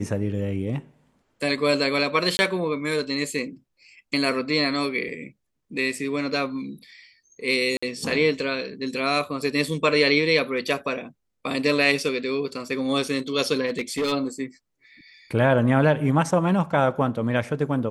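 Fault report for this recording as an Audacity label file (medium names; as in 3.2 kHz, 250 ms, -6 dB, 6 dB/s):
2.370000	2.390000	dropout 20 ms
7.770000	7.830000	dropout 55 ms
13.660000	14.130000	clipped -20.5 dBFS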